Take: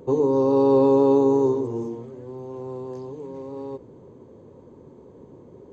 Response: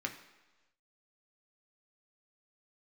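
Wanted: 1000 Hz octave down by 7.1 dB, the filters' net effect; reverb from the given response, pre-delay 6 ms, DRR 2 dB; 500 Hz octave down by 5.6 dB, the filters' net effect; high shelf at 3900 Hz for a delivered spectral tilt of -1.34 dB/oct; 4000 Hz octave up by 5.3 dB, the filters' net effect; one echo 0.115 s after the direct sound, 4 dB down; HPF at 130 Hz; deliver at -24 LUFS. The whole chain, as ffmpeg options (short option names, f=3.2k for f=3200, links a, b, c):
-filter_complex "[0:a]highpass=130,equalizer=f=500:t=o:g=-6,equalizer=f=1k:t=o:g=-6.5,highshelf=f=3.9k:g=-4,equalizer=f=4k:t=o:g=8.5,aecho=1:1:115:0.631,asplit=2[a][b];[1:a]atrim=start_sample=2205,adelay=6[c];[b][c]afir=irnorm=-1:irlink=0,volume=-4.5dB[d];[a][d]amix=inputs=2:normalize=0,volume=1dB"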